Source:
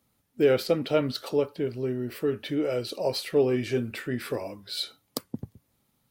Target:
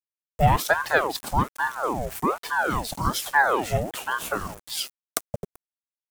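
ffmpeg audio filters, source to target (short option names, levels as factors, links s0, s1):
-af "aeval=exprs='val(0)*gte(abs(val(0)),0.00794)':c=same,highshelf=f=5700:t=q:w=1.5:g=7,aeval=exprs='val(0)*sin(2*PI*800*n/s+800*0.65/1.2*sin(2*PI*1.2*n/s))':c=same,volume=1.88"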